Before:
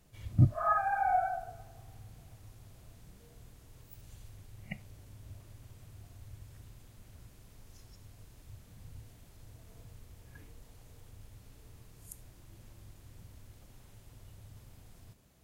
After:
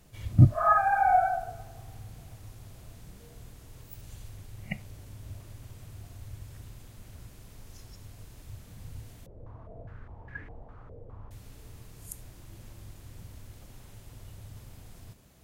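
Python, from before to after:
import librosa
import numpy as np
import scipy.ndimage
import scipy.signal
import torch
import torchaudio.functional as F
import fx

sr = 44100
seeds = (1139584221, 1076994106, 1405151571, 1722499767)

y = fx.filter_held_lowpass(x, sr, hz=4.9, low_hz=530.0, high_hz=1800.0, at=(9.26, 11.31))
y = y * 10.0 ** (6.5 / 20.0)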